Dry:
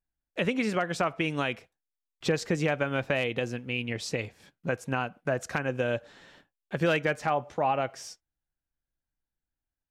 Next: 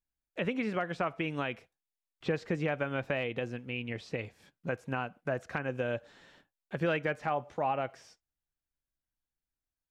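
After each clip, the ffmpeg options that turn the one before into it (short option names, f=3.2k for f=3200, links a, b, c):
-filter_complex "[0:a]acrossover=split=3500[a][b];[b]acompressor=threshold=-57dB:ratio=4:attack=1:release=60[c];[a][c]amix=inputs=2:normalize=0,volume=-4.5dB"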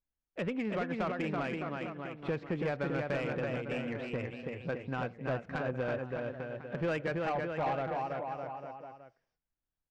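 -af "aecho=1:1:330|610.5|848.9|1052|1224:0.631|0.398|0.251|0.158|0.1,asoftclip=type=tanh:threshold=-25.5dB,adynamicsmooth=sensitivity=2.5:basefreq=2.2k"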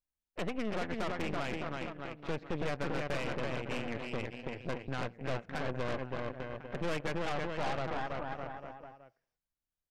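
-af "aeval=exprs='0.0531*(cos(1*acos(clip(val(0)/0.0531,-1,1)))-cos(1*PI/2))+0.0211*(cos(4*acos(clip(val(0)/0.0531,-1,1)))-cos(4*PI/2))':c=same,volume=-4dB"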